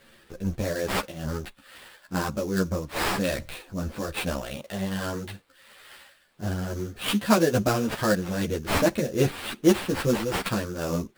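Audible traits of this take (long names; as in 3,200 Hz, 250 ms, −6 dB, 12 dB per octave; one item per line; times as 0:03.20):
a quantiser's noise floor 12 bits, dither triangular
tremolo triangle 2.4 Hz, depth 50%
aliases and images of a low sample rate 6,300 Hz, jitter 20%
a shimmering, thickened sound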